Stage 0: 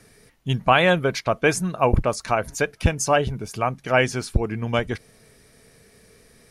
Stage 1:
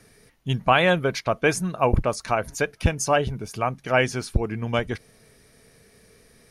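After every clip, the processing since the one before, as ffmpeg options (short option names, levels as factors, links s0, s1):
-af "bandreject=f=7600:w=13,volume=0.841"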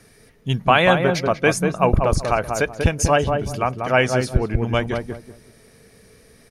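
-filter_complex "[0:a]asplit=2[s0][s1];[s1]adelay=190,lowpass=f=920:p=1,volume=0.708,asplit=2[s2][s3];[s3]adelay=190,lowpass=f=920:p=1,volume=0.28,asplit=2[s4][s5];[s5]adelay=190,lowpass=f=920:p=1,volume=0.28,asplit=2[s6][s7];[s7]adelay=190,lowpass=f=920:p=1,volume=0.28[s8];[s0][s2][s4][s6][s8]amix=inputs=5:normalize=0,volume=1.41"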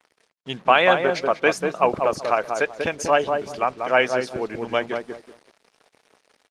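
-af "acrusher=bits=6:mix=0:aa=0.5,highpass=350,lowpass=5900" -ar 48000 -c:a libopus -b:a 20k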